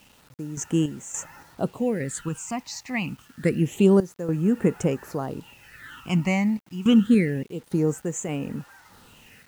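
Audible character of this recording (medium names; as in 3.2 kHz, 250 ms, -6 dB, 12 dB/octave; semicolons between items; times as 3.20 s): random-step tremolo, depth 85%; phasing stages 8, 0.27 Hz, lowest notch 430–4400 Hz; a quantiser's noise floor 10-bit, dither none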